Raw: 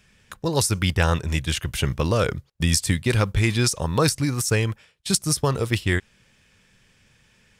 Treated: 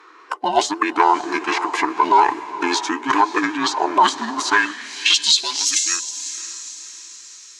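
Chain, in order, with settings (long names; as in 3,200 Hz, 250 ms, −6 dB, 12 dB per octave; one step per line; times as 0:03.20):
frequency inversion band by band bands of 500 Hz
high-pass filter 52 Hz
bass and treble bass −15 dB, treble +6 dB
hum removal 121.6 Hz, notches 7
in parallel at 0 dB: downward compressor, threshold −35 dBFS, peak gain reduction 21.5 dB
on the sum: formants moved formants −5 semitones
soft clipping −4.5 dBFS, distortion −25 dB
on a send: feedback delay with all-pass diffusion 542 ms, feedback 44%, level −14 dB
on the sum: band-pass filter sweep 970 Hz → 6,500 Hz, 0:04.31–0:05.77
boost into a limiter +18.5 dB
level −3 dB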